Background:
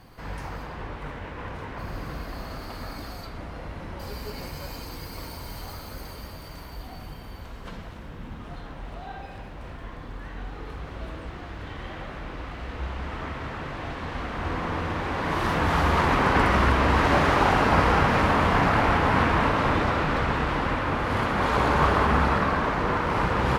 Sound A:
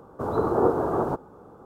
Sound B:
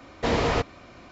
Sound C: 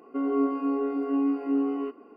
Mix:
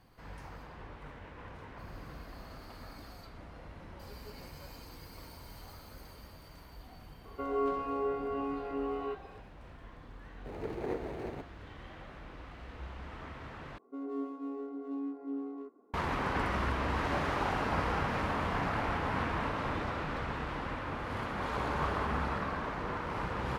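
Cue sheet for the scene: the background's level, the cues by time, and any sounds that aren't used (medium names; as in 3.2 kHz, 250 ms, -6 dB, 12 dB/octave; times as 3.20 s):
background -12 dB
7.24 s: add C -0.5 dB + high-pass 410 Hz 24 dB/octave
10.26 s: add A -13.5 dB + median filter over 41 samples
13.78 s: replace with C -12.5 dB + local Wiener filter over 15 samples
not used: B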